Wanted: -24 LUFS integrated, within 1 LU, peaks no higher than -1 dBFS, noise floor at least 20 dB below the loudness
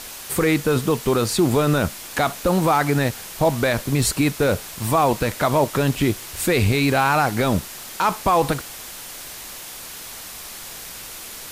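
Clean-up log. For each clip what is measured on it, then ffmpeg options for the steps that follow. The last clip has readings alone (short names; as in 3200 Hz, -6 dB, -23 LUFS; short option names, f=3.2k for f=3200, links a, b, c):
noise floor -36 dBFS; noise floor target -41 dBFS; loudness -20.5 LUFS; peak -7.5 dBFS; loudness target -24.0 LUFS
-> -af "afftdn=nr=6:nf=-36"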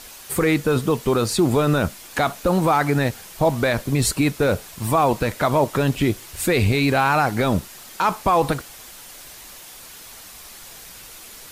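noise floor -41 dBFS; loudness -20.5 LUFS; peak -8.0 dBFS; loudness target -24.0 LUFS
-> -af "volume=-3.5dB"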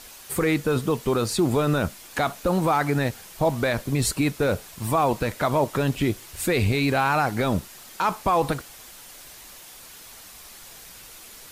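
loudness -24.0 LUFS; peak -11.5 dBFS; noise floor -45 dBFS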